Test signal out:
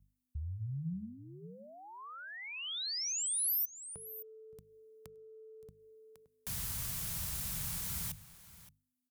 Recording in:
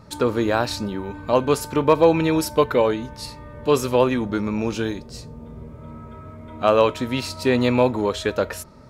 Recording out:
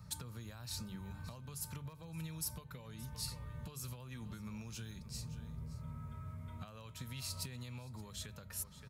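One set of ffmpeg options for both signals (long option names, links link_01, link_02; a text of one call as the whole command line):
ffmpeg -i in.wav -filter_complex "[0:a]aeval=exprs='val(0)+0.00178*(sin(2*PI*50*n/s)+sin(2*PI*2*50*n/s)/2+sin(2*PI*3*50*n/s)/3+sin(2*PI*4*50*n/s)/4+sin(2*PI*5*50*n/s)/5)':channel_layout=same,acompressor=threshold=-21dB:ratio=6,highpass=47,bandreject=frequency=50:width_type=h:width=6,bandreject=frequency=100:width_type=h:width=6,bandreject=frequency=150:width_type=h:width=6,bandreject=frequency=200:width_type=h:width=6,asplit=2[link_01][link_02];[link_02]aecho=0:1:571:0.112[link_03];[link_01][link_03]amix=inputs=2:normalize=0,alimiter=limit=-20dB:level=0:latency=1:release=428,acrossover=split=260|4000[link_04][link_05][link_06];[link_04]acompressor=threshold=-37dB:ratio=4[link_07];[link_05]acompressor=threshold=-37dB:ratio=4[link_08];[link_06]acompressor=threshold=-33dB:ratio=4[link_09];[link_07][link_08][link_09]amix=inputs=3:normalize=0,firequalizer=gain_entry='entry(170,0);entry(280,-20);entry(1100,-9);entry(11000,4)':delay=0.05:min_phase=1,volume=-3.5dB" out.wav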